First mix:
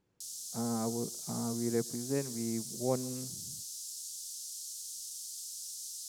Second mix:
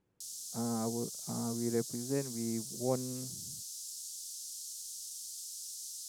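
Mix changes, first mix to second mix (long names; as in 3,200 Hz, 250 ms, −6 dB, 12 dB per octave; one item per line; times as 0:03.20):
speech: add high-frequency loss of the air 170 metres
reverb: off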